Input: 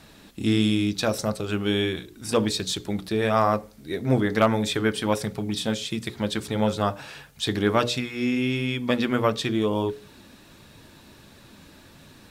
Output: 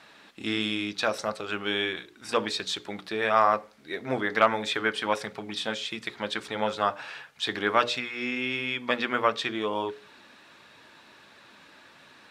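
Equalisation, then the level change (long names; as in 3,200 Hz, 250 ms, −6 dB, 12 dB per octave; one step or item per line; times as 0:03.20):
resonant band-pass 1,600 Hz, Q 0.7
+3.0 dB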